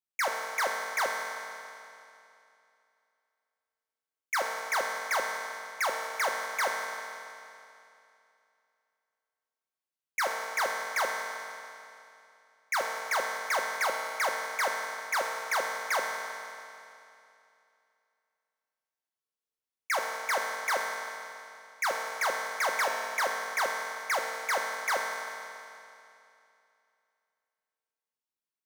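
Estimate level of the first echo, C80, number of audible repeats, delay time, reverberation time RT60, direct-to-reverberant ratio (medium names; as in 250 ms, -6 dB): no echo, 3.0 dB, no echo, no echo, 2.7 s, 0.0 dB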